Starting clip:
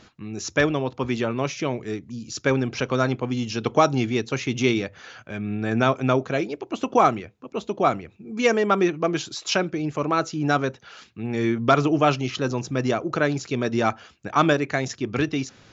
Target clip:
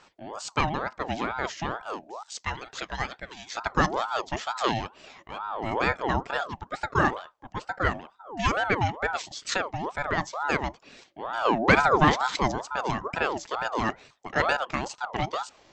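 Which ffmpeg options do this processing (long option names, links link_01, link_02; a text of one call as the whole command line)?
ffmpeg -i in.wav -filter_complex "[0:a]asettb=1/sr,asplit=3[link_01][link_02][link_03];[link_01]atrim=end=2.234[link_04];[link_02]atrim=start=2.23:end=3.57,asetpts=PTS-STARTPTS,afade=type=in:duration=0.004:curve=qsin,afade=type=out:start_time=1.336:duration=0.004:curve=qsin,highpass=650[link_05];[link_03]atrim=start=3.566[link_06];[link_04][link_05]acrossfade=duration=0.004:curve1=hsin:curve2=qsin[link_07];[link_07][link_06]acrossfade=duration=0.004:curve1=qsin:curve2=hsin,asettb=1/sr,asplit=3[link_08][link_09][link_10];[link_08]atrim=end=11.454[link_11];[link_09]atrim=start=11.45:end=12.52,asetpts=PTS-STARTPTS,afade=type=in:duration=0.004:curve=qsin,afade=type=out:start_time=1.066:duration=0.004:curve=qsin,acontrast=38[link_12];[link_10]atrim=start=12.516[link_13];[link_11][link_12]acrossfade=duration=0.004:curve1=hsin:curve2=qsin[link_14];[link_14][link_13]acrossfade=duration=0.004:curve1=qsin:curve2=hsin,aeval=exprs='val(0)*sin(2*PI*800*n/s+800*0.45/2.2*sin(2*PI*2.2*n/s))':channel_layout=same,volume=-2.5dB" out.wav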